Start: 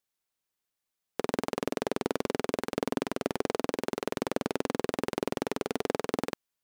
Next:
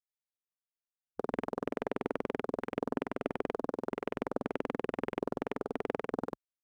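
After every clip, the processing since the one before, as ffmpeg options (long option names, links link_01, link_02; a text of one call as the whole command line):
ffmpeg -i in.wav -af "afwtdn=0.01,volume=-4dB" out.wav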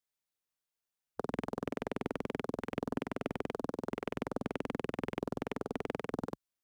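ffmpeg -i in.wav -filter_complex "[0:a]acrossover=split=200|3000[link_01][link_02][link_03];[link_02]acompressor=threshold=-43dB:ratio=2.5[link_04];[link_01][link_04][link_03]amix=inputs=3:normalize=0,volume=4.5dB" out.wav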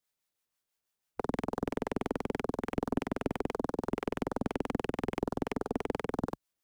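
ffmpeg -i in.wav -filter_complex "[0:a]aeval=exprs='(tanh(15.8*val(0)+0.4)-tanh(0.4))/15.8':channel_layout=same,acrossover=split=730[link_01][link_02];[link_01]aeval=exprs='val(0)*(1-0.5/2+0.5/2*cos(2*PI*6.1*n/s))':channel_layout=same[link_03];[link_02]aeval=exprs='val(0)*(1-0.5/2-0.5/2*cos(2*PI*6.1*n/s))':channel_layout=same[link_04];[link_03][link_04]amix=inputs=2:normalize=0,volume=8.5dB" out.wav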